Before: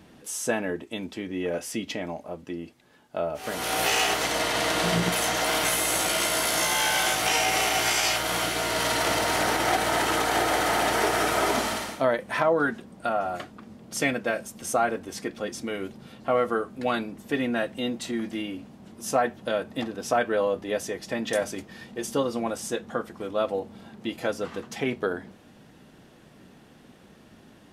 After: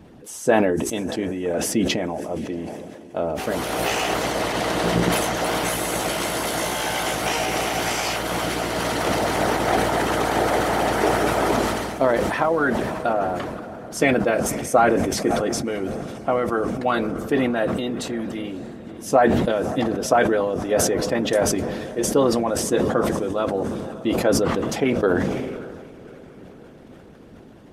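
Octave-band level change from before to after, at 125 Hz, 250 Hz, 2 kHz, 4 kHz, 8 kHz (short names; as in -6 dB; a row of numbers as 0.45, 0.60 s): +9.0, +8.0, +1.0, -1.0, +0.5 dB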